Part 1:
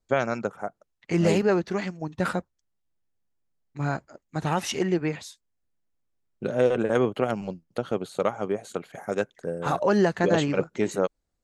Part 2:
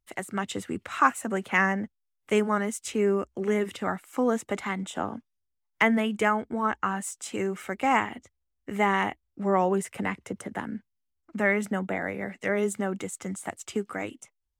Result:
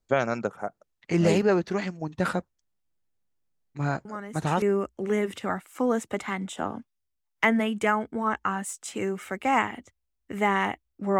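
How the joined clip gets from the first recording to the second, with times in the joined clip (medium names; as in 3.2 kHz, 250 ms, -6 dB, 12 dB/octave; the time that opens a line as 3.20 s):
part 1
4.05 s: add part 2 from 2.43 s 0.57 s -10.5 dB
4.62 s: go over to part 2 from 3.00 s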